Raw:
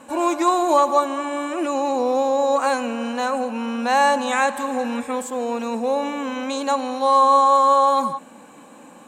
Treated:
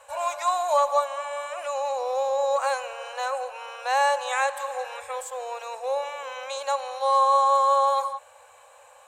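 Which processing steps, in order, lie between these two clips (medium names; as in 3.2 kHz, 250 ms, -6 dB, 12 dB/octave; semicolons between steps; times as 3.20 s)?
elliptic band-stop 100–540 Hz, stop band 40 dB; trim -4 dB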